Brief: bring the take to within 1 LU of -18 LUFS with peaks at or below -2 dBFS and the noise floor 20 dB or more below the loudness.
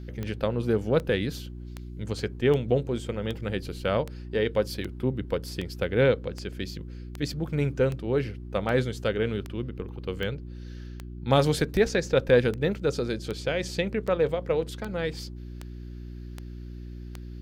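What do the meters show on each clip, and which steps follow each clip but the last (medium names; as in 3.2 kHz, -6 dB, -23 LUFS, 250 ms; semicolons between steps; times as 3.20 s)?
clicks found 23; hum 60 Hz; highest harmonic 360 Hz; hum level -37 dBFS; loudness -27.5 LUFS; peak level -8.5 dBFS; loudness target -18.0 LUFS
-> de-click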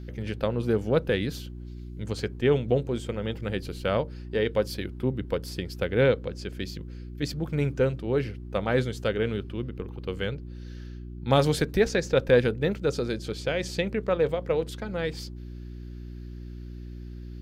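clicks found 0; hum 60 Hz; highest harmonic 360 Hz; hum level -37 dBFS
-> de-hum 60 Hz, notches 6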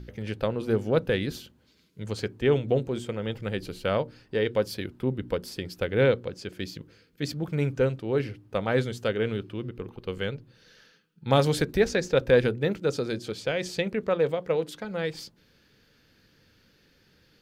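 hum not found; loudness -28.0 LUFS; peak level -9.0 dBFS; loudness target -18.0 LUFS
-> trim +10 dB; peak limiter -2 dBFS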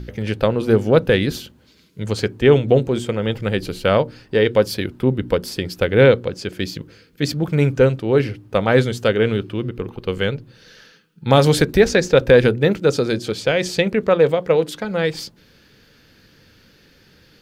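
loudness -18.5 LUFS; peak level -2.0 dBFS; noise floor -53 dBFS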